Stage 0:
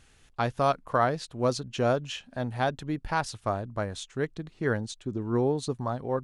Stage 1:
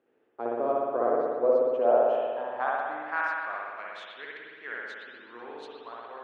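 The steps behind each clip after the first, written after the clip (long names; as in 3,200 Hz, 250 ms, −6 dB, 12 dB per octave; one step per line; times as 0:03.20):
three-way crossover with the lows and the highs turned down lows −22 dB, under 230 Hz, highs −12 dB, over 3,400 Hz
band-pass filter sweep 410 Hz → 2,600 Hz, 0:01.14–0:03.85
spring reverb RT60 1.8 s, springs 59 ms, chirp 75 ms, DRR −4.5 dB
level +2.5 dB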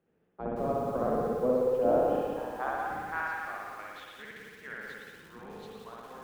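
sub-octave generator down 1 octave, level +4 dB
feedback echo at a low word length 175 ms, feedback 35%, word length 8 bits, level −5 dB
level −5 dB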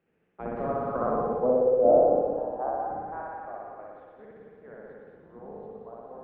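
low-pass filter sweep 2,500 Hz → 640 Hz, 0:00.37–0:01.76
delay with a high-pass on its return 220 ms, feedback 63%, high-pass 2,800 Hz, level −4 dB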